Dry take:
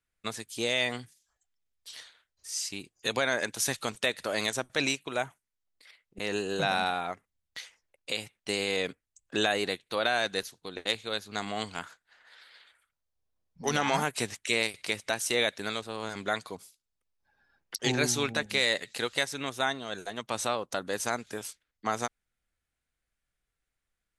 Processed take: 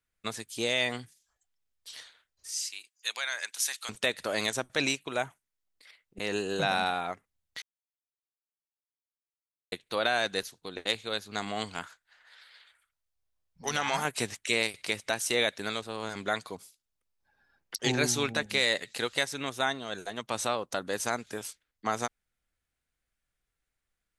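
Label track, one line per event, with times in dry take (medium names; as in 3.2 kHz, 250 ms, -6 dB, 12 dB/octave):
2.510000	3.890000	Bessel high-pass 1.9 kHz
7.620000	9.720000	mute
11.860000	14.050000	peaking EQ 260 Hz -8 dB 2.5 oct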